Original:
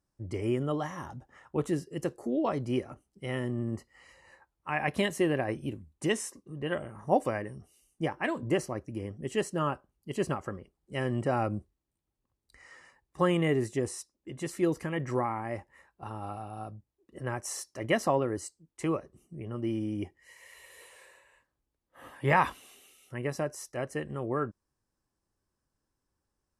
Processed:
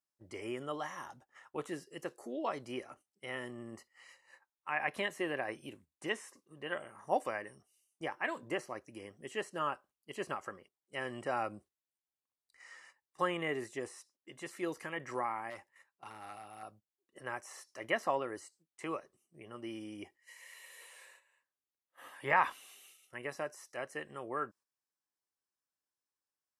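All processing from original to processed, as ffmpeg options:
ffmpeg -i in.wav -filter_complex "[0:a]asettb=1/sr,asplit=3[link_01][link_02][link_03];[link_01]atrim=end=15.504[link_04];[link_02]atrim=start=15.5:end=16.63,asetpts=PTS-STARTPTS,afade=type=in:duration=0.004:curve=qsin,afade=type=out:start_time=1.126:duration=0.004:curve=qsin,highpass=56,equalizer=frequency=760:width=0.77:gain=-3,asoftclip=type=hard:threshold=-34dB[link_05];[link_03]atrim=start=16.626[link_06];[link_04][link_05]acrossfade=duration=0.004:curve1=hsin:curve2=qsin[link_07];[link_07][link_06]acrossfade=duration=0.004:curve1=qsin:curve2=hsin,highpass=frequency=1300:poles=1,agate=range=-9dB:threshold=-60dB:ratio=16:detection=peak,acrossover=split=2600[link_08][link_09];[link_09]acompressor=threshold=-53dB:ratio=4:attack=1:release=60[link_10];[link_08][link_10]amix=inputs=2:normalize=0,volume=1dB" out.wav

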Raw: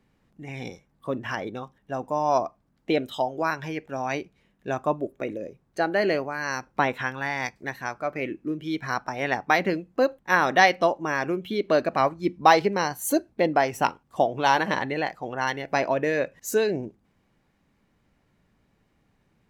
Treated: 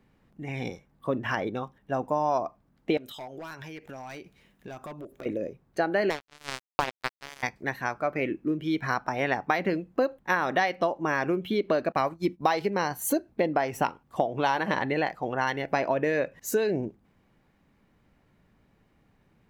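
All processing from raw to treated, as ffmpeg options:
ffmpeg -i in.wav -filter_complex "[0:a]asettb=1/sr,asplit=3[link_01][link_02][link_03];[link_01]atrim=end=2.974[link_04];[link_02]atrim=start=2.97:end=5.26,asetpts=PTS-STARTPTS,afade=type=in:duration=0.004:curve=qsin,afade=type=out:start_time=2.286:duration=0.004:curve=qsin,highshelf=frequency=2700:gain=10,asoftclip=type=hard:threshold=-23.5dB,acompressor=threshold=-40dB:ratio=10:attack=3.2:release=140:knee=1:detection=peak[link_05];[link_03]atrim=start=5.256[link_06];[link_04][link_05]acrossfade=duration=0.004:curve1=hsin:curve2=qsin[link_07];[link_07][link_06]acrossfade=duration=0.004:curve1=qsin:curve2=hsin,asettb=1/sr,asplit=3[link_08][link_09][link_10];[link_08]atrim=end=6.104[link_11];[link_09]atrim=start=6.1:end=7.43,asetpts=PTS-STARTPTS,afade=type=in:duration=0.004:curve=qsin,afade=type=out:start_time=1.326:duration=0.004:curve=qsin,aeval=exprs='val(0)+0.00398*sin(2*PI*440*n/s)':channel_layout=same,acrusher=bits=2:mix=0:aa=0.5[link_12];[link_10]atrim=start=7.426[link_13];[link_11][link_12]acrossfade=duration=0.004:curve1=hsin:curve2=qsin[link_14];[link_14][link_13]acrossfade=duration=0.004:curve1=qsin:curve2=hsin,asettb=1/sr,asplit=3[link_15][link_16][link_17];[link_15]atrim=end=11.924[link_18];[link_16]atrim=start=11.92:end=12.7,asetpts=PTS-STARTPTS,afade=type=in:duration=0.004:curve=qsin,afade=type=out:start_time=0.776:duration=0.004:curve=qsin,highshelf=frequency=4900:gain=10.5,agate=range=-33dB:threshold=-36dB:ratio=3:release=100:detection=peak,acrossover=split=5800[link_19][link_20];[link_20]acompressor=threshold=-39dB:ratio=4:attack=1:release=60[link_21];[link_19][link_21]amix=inputs=2:normalize=0[link_22];[link_17]atrim=start=12.696[link_23];[link_18][link_22]acrossfade=duration=0.004:curve1=hsin:curve2=qsin[link_24];[link_24][link_23]acrossfade=duration=0.004:curve1=qsin:curve2=hsin,equalizer=frequency=7000:width_type=o:width=1.8:gain=-5,acompressor=threshold=-24dB:ratio=6,volume=2.5dB" out.wav

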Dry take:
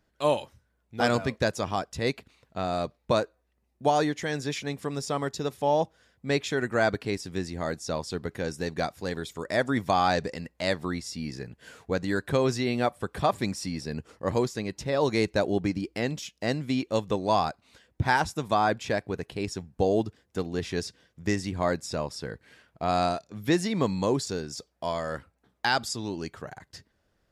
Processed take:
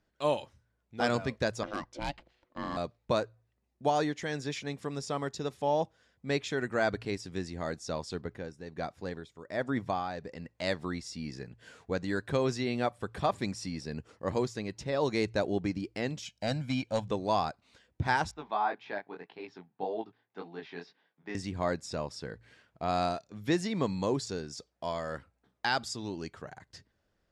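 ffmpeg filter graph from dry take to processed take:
ffmpeg -i in.wav -filter_complex "[0:a]asettb=1/sr,asplit=3[link_01][link_02][link_03];[link_01]atrim=end=1.634[link_04];[link_02]atrim=start=1.63:end=2.77,asetpts=PTS-STARTPTS,afade=type=in:duration=0.004:curve=qsin,afade=type=out:start_time=1.136:duration=0.004:curve=qsin,adynamicsmooth=sensitivity=6:basefreq=6000,aeval=exprs='0.119*(abs(mod(val(0)/0.119+3,4)-2)-1)':channel_layout=same,aeval=exprs='val(0)*sin(2*PI*430*n/s)':channel_layout=same[link_05];[link_03]atrim=start=2.766[link_06];[link_04][link_05]acrossfade=duration=0.004:curve1=hsin:curve2=qsin[link_07];[link_07][link_06]acrossfade=duration=0.004:curve1=qsin:curve2=hsin,asettb=1/sr,asplit=3[link_08][link_09][link_10];[link_08]atrim=end=8.214[link_11];[link_09]atrim=start=8.21:end=10.49,asetpts=PTS-STARTPTS,afade=type=in:duration=0.004:curve=qsin,afade=type=out:start_time=2.276:duration=0.004:curve=qsin,tremolo=f=1.3:d=0.63,highshelf=frequency=3000:gain=-8[link_12];[link_10]atrim=start=10.486[link_13];[link_11][link_12]acrossfade=duration=0.004:curve1=hsin:curve2=qsin[link_14];[link_14][link_13]acrossfade=duration=0.004:curve1=qsin:curve2=hsin,asettb=1/sr,asplit=3[link_15][link_16][link_17];[link_15]atrim=end=16.254[link_18];[link_16]atrim=start=16.25:end=17.08,asetpts=PTS-STARTPTS,afade=type=in:duration=0.004:curve=qsin,afade=type=out:start_time=0.826:duration=0.004:curve=qsin,aecho=1:1:1.3:0.82,atrim=end_sample=36603,aeval=exprs='clip(val(0),-1,0.119)':channel_layout=same[link_19];[link_17]atrim=start=17.076[link_20];[link_18][link_19]acrossfade=duration=0.004:curve1=hsin:curve2=qsin[link_21];[link_21][link_20]acrossfade=duration=0.004:curve1=qsin:curve2=hsin,asettb=1/sr,asplit=3[link_22][link_23][link_24];[link_22]atrim=end=18.314[link_25];[link_23]atrim=start=18.31:end=21.35,asetpts=PTS-STARTPTS,afade=type=in:duration=0.004:curve=qsin,afade=type=out:start_time=3.036:duration=0.004:curve=qsin,highpass=frequency=210:width=0.5412,highpass=frequency=210:width=1.3066,equalizer=frequency=220:width_type=q:width=4:gain=-9,equalizer=frequency=340:width_type=q:width=4:gain=-5,equalizer=frequency=530:width_type=q:width=4:gain=-8,equalizer=frequency=850:width_type=q:width=4:gain=7,equalizer=frequency=2900:width_type=q:width=4:gain=-4,lowpass=frequency=3600:width=0.5412,lowpass=frequency=3600:width=1.3066,flanger=delay=17.5:depth=6.5:speed=1.8[link_26];[link_24]atrim=start=21.346[link_27];[link_25][link_26]acrossfade=duration=0.004:curve1=hsin:curve2=qsin[link_28];[link_28][link_27]acrossfade=duration=0.004:curve1=qsin:curve2=hsin,lowpass=8400,bandreject=frequency=57.01:width_type=h:width=4,bandreject=frequency=114.02:width_type=h:width=4,volume=-4.5dB" out.wav

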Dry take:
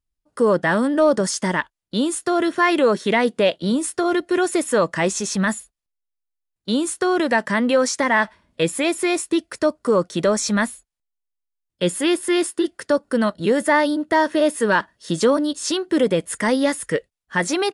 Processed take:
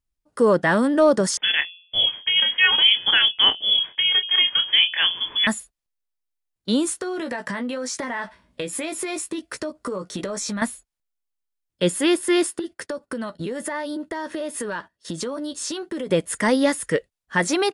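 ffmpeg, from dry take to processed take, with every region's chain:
ffmpeg -i in.wav -filter_complex "[0:a]asettb=1/sr,asplit=3[link_01][link_02][link_03];[link_01]atrim=end=1.374[link_04];[link_02]atrim=start=1.37:end=5.47,asetpts=PTS-STARTPTS,afade=type=in:duration=0.004:curve=qsin,afade=type=out:start_time=4.096:duration=0.004:curve=qsin,asplit=2[link_05][link_06];[link_06]adelay=28,volume=-9.5dB[link_07];[link_05][link_07]amix=inputs=2:normalize=0,atrim=end_sample=180810,bandreject=frequency=88.78:width_type=h:width=4,bandreject=frequency=177.56:width_type=h:width=4,bandreject=frequency=266.34:width_type=h:width=4,bandreject=frequency=355.12:width_type=h:width=4,bandreject=frequency=443.9:width_type=h:width=4,bandreject=frequency=532.68:width_type=h:width=4,bandreject=frequency=621.46:width_type=h:width=4,bandreject=frequency=710.24:width_type=h:width=4,bandreject=frequency=799.02:width_type=h:width=4,bandreject=frequency=887.8:width_type=h:width=4,bandreject=frequency=976.58:width_type=h:width=4,bandreject=frequency=1065.36:width_type=h:width=4,lowpass=frequency=3100:width_type=q:width=0.5098,lowpass=frequency=3100:width_type=q:width=0.6013,lowpass=frequency=3100:width_type=q:width=0.9,lowpass=frequency=3100:width_type=q:width=2.563,afreqshift=-3600[link_08];[link_03]atrim=start=5.466[link_09];[link_04][link_08]acrossfade=duration=0.004:curve1=hsin:curve2=qsin[link_10];[link_10][link_09]acrossfade=duration=0.004:curve1=qsin:curve2=hsin,asettb=1/sr,asplit=3[link_11][link_12][link_13];[link_11]atrim=end=7.014[link_14];[link_12]atrim=start=7.01:end=10.62,asetpts=PTS-STARTPTS,afade=type=in:duration=0.004:curve=qsin,afade=type=out:start_time=3.606:duration=0.004:curve=qsin,asplit=2[link_15][link_16];[link_16]adelay=16,volume=-6dB[link_17];[link_15][link_17]amix=inputs=2:normalize=0,atrim=end_sample=159201,acompressor=threshold=-24dB:ratio=16:attack=3.2:release=140:knee=1:detection=peak[link_18];[link_13]atrim=start=10.616[link_19];[link_14][link_18]acrossfade=duration=0.004:curve1=hsin:curve2=qsin[link_20];[link_20][link_19]acrossfade=duration=0.004:curve1=qsin:curve2=hsin,asettb=1/sr,asplit=3[link_21][link_22][link_23];[link_21]atrim=end=12.594[link_24];[link_22]atrim=start=12.59:end=16.1,asetpts=PTS-STARTPTS,afade=type=in:duration=0.004:curve=qsin,afade=type=out:start_time=3.506:duration=0.004:curve=qsin,agate=range=-15dB:threshold=-42dB:ratio=16:release=100:detection=peak,asplit=2[link_25][link_26];[link_26]adelay=12,volume=-10.5dB[link_27];[link_25][link_27]amix=inputs=2:normalize=0,atrim=end_sample=154791,acompressor=threshold=-25dB:ratio=10:attack=3.2:release=140:knee=1:detection=peak[link_28];[link_23]atrim=start=16.096[link_29];[link_24][link_28]acrossfade=duration=0.004:curve1=hsin:curve2=qsin[link_30];[link_30][link_29]acrossfade=duration=0.004:curve1=qsin:curve2=hsin" out.wav

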